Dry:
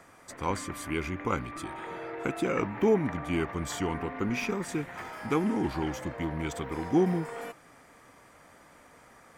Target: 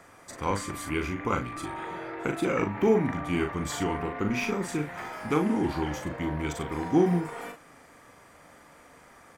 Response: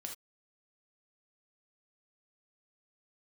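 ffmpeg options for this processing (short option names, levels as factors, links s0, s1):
-filter_complex "[0:a]asplit=2[s0][s1];[s1]adelay=40,volume=0.501[s2];[s0][s2]amix=inputs=2:normalize=0,asplit=2[s3][s4];[1:a]atrim=start_sample=2205[s5];[s4][s5]afir=irnorm=-1:irlink=0,volume=0.237[s6];[s3][s6]amix=inputs=2:normalize=0"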